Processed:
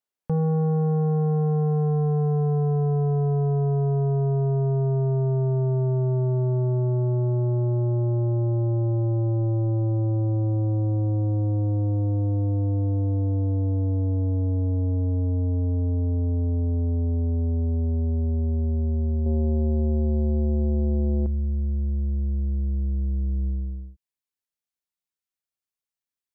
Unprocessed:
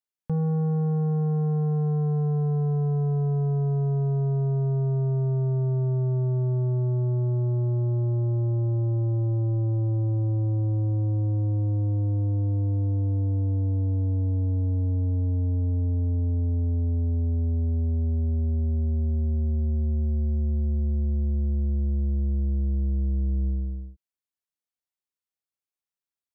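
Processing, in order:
parametric band 630 Hz +6.5 dB 2.7 octaves, from 0:19.26 +15 dB, from 0:21.26 −3 dB

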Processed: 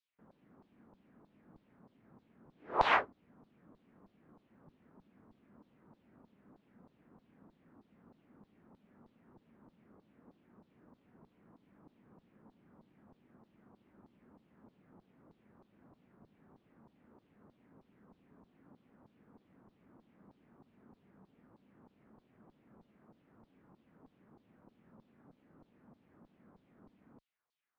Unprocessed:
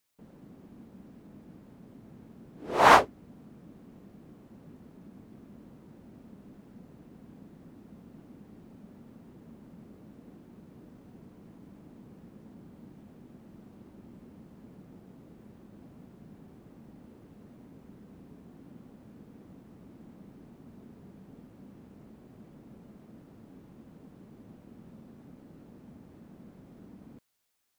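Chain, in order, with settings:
auto-filter band-pass saw down 3.2 Hz 930–4,400 Hz
spectral tilt −4.5 dB per octave
level +1.5 dB

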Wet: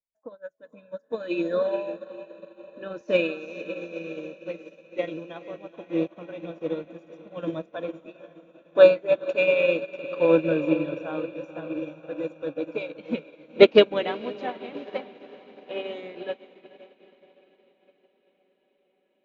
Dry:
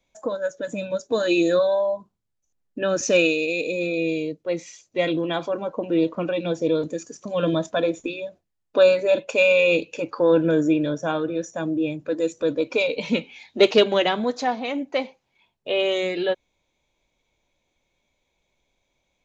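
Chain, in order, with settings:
low-pass filter 2,800 Hz 12 dB per octave
feedback delay with all-pass diffusion 471 ms, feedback 78%, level −7.5 dB
expander for the loud parts 2.5 to 1, over −35 dBFS
level +4 dB

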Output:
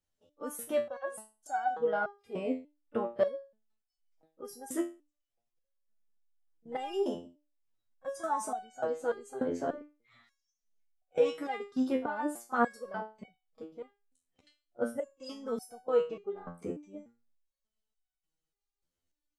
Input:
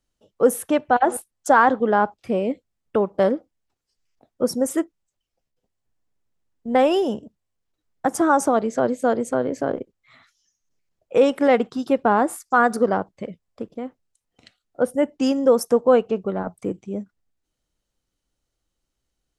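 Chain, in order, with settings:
backwards echo 31 ms −22 dB
step-sequenced resonator 3.4 Hz 86–750 Hz

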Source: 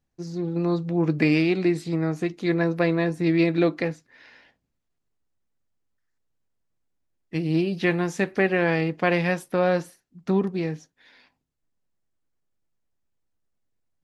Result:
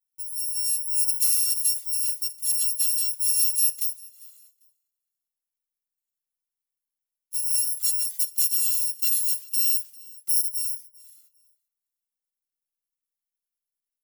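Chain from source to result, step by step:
samples in bit-reversed order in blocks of 256 samples
first-order pre-emphasis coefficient 0.97
on a send: repeating echo 398 ms, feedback 24%, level −23 dB
on the sum: level −4.5 dB

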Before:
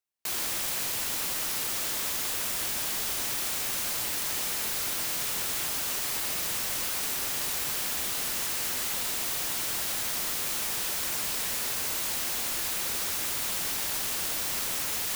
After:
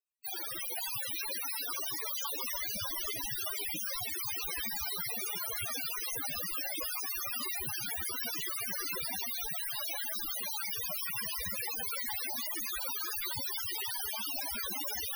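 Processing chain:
dynamic equaliser 7,600 Hz, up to −4 dB, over −49 dBFS, Q 4.5
on a send: feedback delay with all-pass diffusion 495 ms, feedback 45%, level −3 dB
on the sum: spectral peaks only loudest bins 16
level +7 dB

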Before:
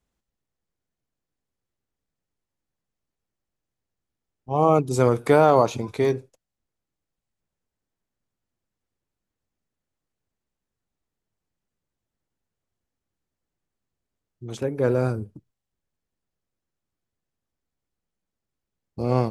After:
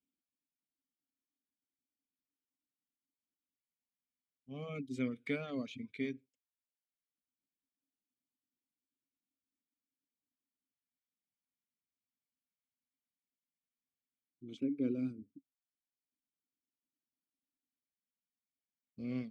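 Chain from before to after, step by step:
auto-filter notch square 0.14 Hz 320–1,800 Hz
reverb reduction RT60 0.77 s
formant filter i
level +1 dB

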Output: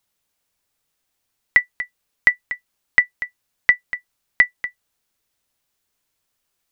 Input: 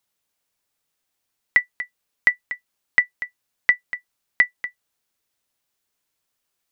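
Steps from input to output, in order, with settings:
low-shelf EQ 90 Hz +7 dB
level +2.5 dB

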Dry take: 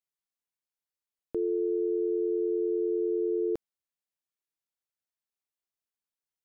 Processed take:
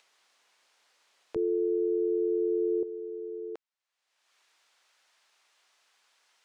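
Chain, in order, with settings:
high-pass filter 540 Hz 12 dB per octave, from 0:01.36 280 Hz, from 0:02.83 750 Hz
upward compression, threshold −40 dBFS
high-frequency loss of the air 94 metres
level +2 dB

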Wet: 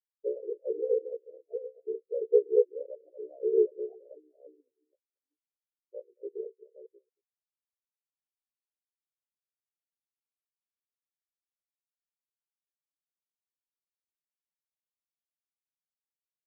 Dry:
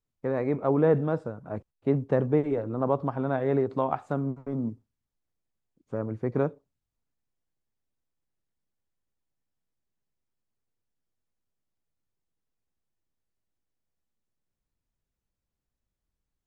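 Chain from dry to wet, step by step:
delay that plays each chunk backwards 413 ms, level −8 dB
parametric band 430 Hz +7 dB 1.5 octaves
mains-hum notches 60/120/180/240/300/360/420/480/540 Hz
slap from a distant wall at 39 metres, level −10 dB
treble cut that deepens with the level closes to 580 Hz, closed at −21 dBFS
in parallel at +2 dB: downward compressor, threshold −36 dBFS, peak gain reduction 20.5 dB
on the sum: ring modulation 33 Hz
high-pass filter 260 Hz 12 dB per octave
brickwall limiter −16.5 dBFS, peak gain reduction 8 dB
phaser with its sweep stopped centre 520 Hz, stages 4
every bin expanded away from the loudest bin 4 to 1
level +6 dB

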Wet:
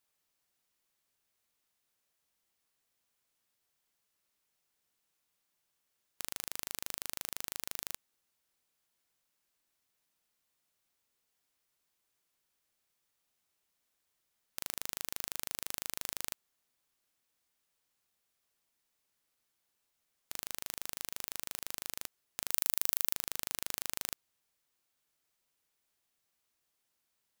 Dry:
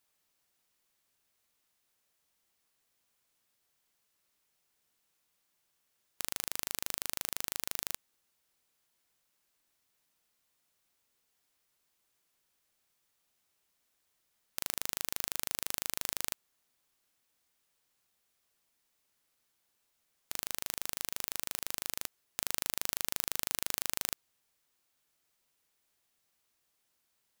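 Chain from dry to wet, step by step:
0:22.50–0:23.13: high-shelf EQ 7,100 Hz → 10,000 Hz +10 dB
level −3.5 dB

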